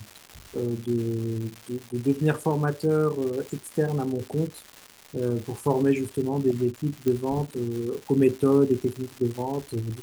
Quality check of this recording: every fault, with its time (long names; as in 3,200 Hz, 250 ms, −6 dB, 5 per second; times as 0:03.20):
surface crackle 400 per second −33 dBFS
0:07.08: click −14 dBFS